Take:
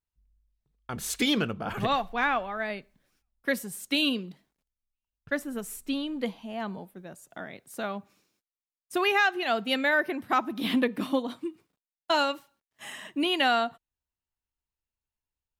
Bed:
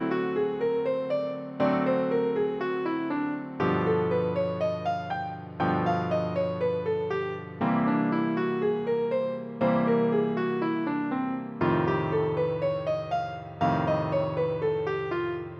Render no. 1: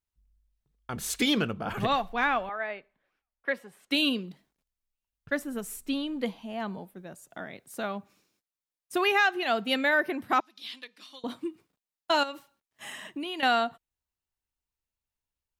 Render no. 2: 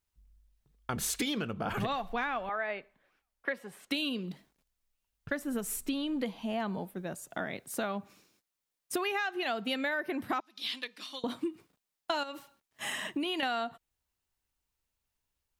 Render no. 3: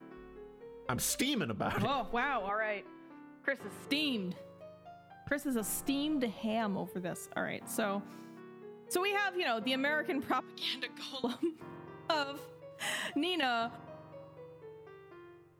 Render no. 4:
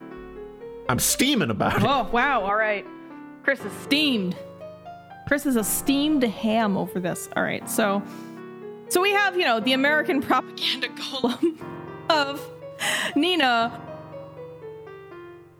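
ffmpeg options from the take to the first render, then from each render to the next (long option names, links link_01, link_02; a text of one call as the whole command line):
ffmpeg -i in.wav -filter_complex "[0:a]asettb=1/sr,asplit=3[link_01][link_02][link_03];[link_01]atrim=end=2.494[link_04];[link_02]atrim=start=2.49:end=3.91,asetpts=PTS-STARTPTS,afade=type=in:duration=0.004:curve=qsin,afade=type=out:start_time=1.416:duration=0.004:curve=qsin,acrossover=split=400 3100:gain=0.178 1 0.0708[link_05][link_06][link_07];[link_05][link_06][link_07]amix=inputs=3:normalize=0[link_08];[link_03]atrim=start=3.906[link_09];[link_04][link_08]acrossfade=duration=0.004:curve1=hsin:curve2=qsin[link_10];[link_10][link_09]acrossfade=duration=0.004:curve1=qsin:curve2=hsin,asettb=1/sr,asplit=3[link_11][link_12][link_13];[link_11]atrim=end=10.404[link_14];[link_12]atrim=start=10.4:end=11.24,asetpts=PTS-STARTPTS,afade=type=in:duration=0.004:curve=qsin,afade=type=out:start_time=0.836:duration=0.004:curve=qsin,bandpass=frequency=4900:width_type=q:width=2[link_15];[link_13]atrim=start=11.236[link_16];[link_14][link_15]acrossfade=duration=0.004:curve1=hsin:curve2=qsin[link_17];[link_17][link_16]acrossfade=duration=0.004:curve1=qsin:curve2=hsin,asettb=1/sr,asplit=3[link_18][link_19][link_20];[link_18]atrim=end=12.234[link_21];[link_19]atrim=start=12.23:end=13.43,asetpts=PTS-STARTPTS,afade=type=in:duration=0.004:curve=qsin,afade=type=out:start_time=1.196:duration=0.004:curve=qsin,acompressor=threshold=-32dB:ratio=6:attack=3.2:release=140:knee=1:detection=peak[link_22];[link_20]atrim=start=13.426[link_23];[link_21][link_22]acrossfade=duration=0.004:curve1=hsin:curve2=qsin[link_24];[link_24][link_23]acrossfade=duration=0.004:curve1=qsin:curve2=hsin" out.wav
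ffmpeg -i in.wav -filter_complex "[0:a]asplit=2[link_01][link_02];[link_02]alimiter=level_in=1.5dB:limit=-24dB:level=0:latency=1:release=247,volume=-1.5dB,volume=-1dB[link_03];[link_01][link_03]amix=inputs=2:normalize=0,acompressor=threshold=-30dB:ratio=6" out.wav
ffmpeg -i in.wav -i bed.wav -filter_complex "[1:a]volume=-24dB[link_01];[0:a][link_01]amix=inputs=2:normalize=0" out.wav
ffmpeg -i in.wav -af "volume=12dB" out.wav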